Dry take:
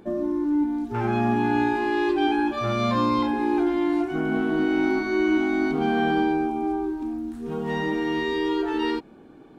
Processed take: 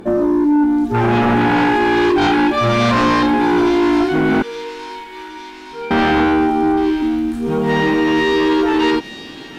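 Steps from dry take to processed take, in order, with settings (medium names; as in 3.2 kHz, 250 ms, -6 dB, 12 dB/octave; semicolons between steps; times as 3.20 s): 4.42–5.91 s: feedback comb 470 Hz, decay 0.26 s, harmonics all, mix 100%; sine folder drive 9 dB, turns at -10.5 dBFS; feedback echo behind a high-pass 863 ms, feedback 61%, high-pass 2.9 kHz, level -7 dB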